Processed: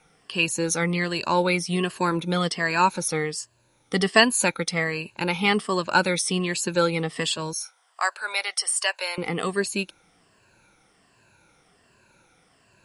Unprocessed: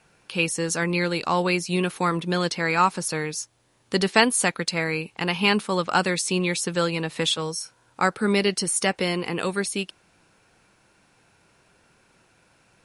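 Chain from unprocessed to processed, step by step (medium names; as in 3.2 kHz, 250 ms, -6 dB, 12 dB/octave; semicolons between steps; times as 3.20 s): drifting ripple filter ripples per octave 1.4, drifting -1.3 Hz, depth 12 dB; 7.53–9.18 s: inverse Chebyshev high-pass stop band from 150 Hz, stop band 70 dB; trim -1.5 dB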